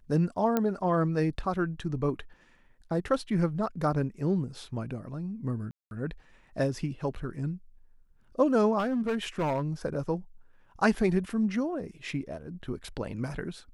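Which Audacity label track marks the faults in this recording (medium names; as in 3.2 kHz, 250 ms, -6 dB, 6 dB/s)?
0.570000	0.570000	pop -13 dBFS
5.710000	5.910000	dropout 201 ms
8.780000	9.640000	clipped -24.5 dBFS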